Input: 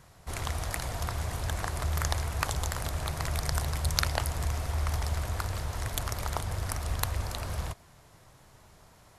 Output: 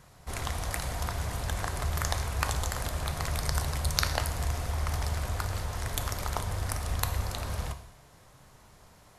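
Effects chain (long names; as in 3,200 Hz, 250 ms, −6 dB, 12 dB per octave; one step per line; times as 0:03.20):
reverb whose tail is shaped and stops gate 280 ms falling, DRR 8 dB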